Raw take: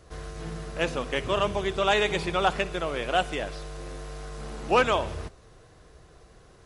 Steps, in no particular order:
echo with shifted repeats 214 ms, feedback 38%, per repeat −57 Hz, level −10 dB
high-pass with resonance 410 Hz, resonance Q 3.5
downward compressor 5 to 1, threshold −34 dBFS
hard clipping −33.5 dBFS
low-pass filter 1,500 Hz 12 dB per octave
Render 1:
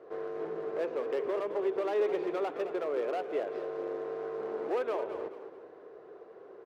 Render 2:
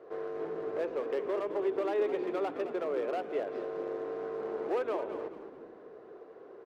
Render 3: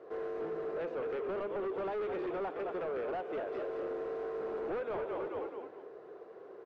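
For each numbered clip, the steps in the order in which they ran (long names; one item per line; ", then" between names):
low-pass filter, then downward compressor, then hard clipping, then echo with shifted repeats, then high-pass with resonance
downward compressor, then low-pass filter, then hard clipping, then high-pass with resonance, then echo with shifted repeats
echo with shifted repeats, then downward compressor, then high-pass with resonance, then hard clipping, then low-pass filter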